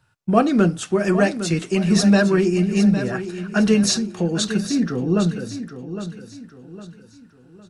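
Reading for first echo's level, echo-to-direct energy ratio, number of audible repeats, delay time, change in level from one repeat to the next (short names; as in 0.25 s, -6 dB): -11.0 dB, -10.5 dB, 3, 0.808 s, -8.5 dB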